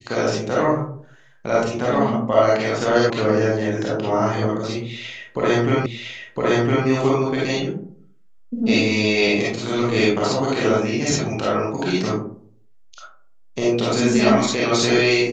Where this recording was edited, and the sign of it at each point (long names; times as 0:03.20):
0:03.10: cut off before it has died away
0:05.86: the same again, the last 1.01 s